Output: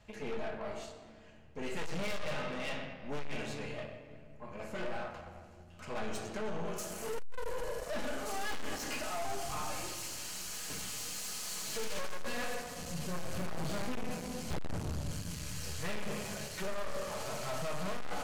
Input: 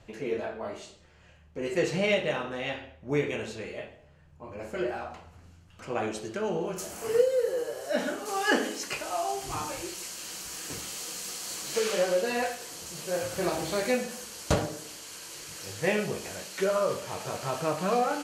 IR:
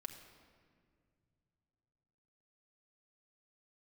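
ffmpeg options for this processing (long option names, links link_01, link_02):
-filter_complex "[0:a]asettb=1/sr,asplit=3[link_01][link_02][link_03];[link_01]atrim=end=12.554[link_04];[link_02]atrim=start=12.55:end=15.09,asetpts=PTS-STARTPTS,afade=type=in:duration=0.004:curve=qsin,afade=type=out:start_time=2.536:duration=0.004:curve=qsin,bass=frequency=250:gain=12,treble=frequency=4000:gain=-3[link_05];[link_03]atrim=start=15.086[link_06];[link_04][link_05]acrossfade=duration=0.004:curve1=hsin:curve2=qsin[link_07];[link_07][link_06]acrossfade=duration=0.004:curve1=qsin:curve2=hsin,aeval=exprs='0.596*(cos(1*acos(clip(val(0)/0.596,-1,1)))-cos(1*PI/2))+0.0841*(cos(8*acos(clip(val(0)/0.596,-1,1)))-cos(8*PI/2))':channel_layout=same,equalizer=frequency=370:width_type=o:width=0.62:gain=-7[link_08];[1:a]atrim=start_sample=2205[link_09];[link_08][link_09]afir=irnorm=-1:irlink=0,aeval=exprs='(tanh(79.4*val(0)+0.65)-tanh(0.65))/79.4':channel_layout=same,volume=3.5dB"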